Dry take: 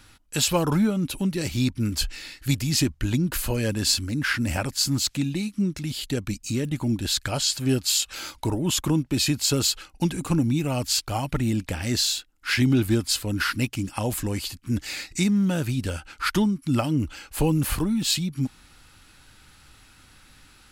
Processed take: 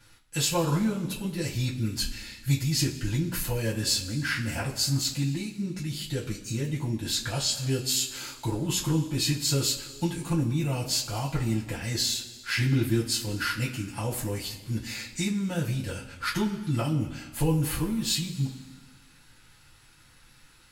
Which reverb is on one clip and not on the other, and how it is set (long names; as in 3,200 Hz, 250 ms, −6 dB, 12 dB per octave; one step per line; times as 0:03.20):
coupled-rooms reverb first 0.2 s, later 1.6 s, from −19 dB, DRR −7.5 dB
level −12 dB